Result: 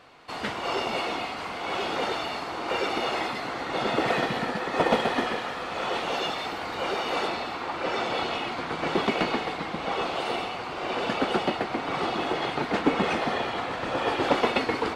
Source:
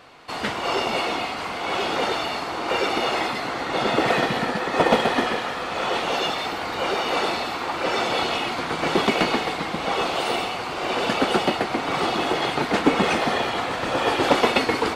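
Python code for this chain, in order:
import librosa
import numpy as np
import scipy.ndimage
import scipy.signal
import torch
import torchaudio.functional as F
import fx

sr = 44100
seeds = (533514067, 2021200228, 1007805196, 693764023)

y = fx.high_shelf(x, sr, hz=6800.0, db=fx.steps((0.0, -4.0), (7.26, -11.5)))
y = F.gain(torch.from_numpy(y), -4.5).numpy()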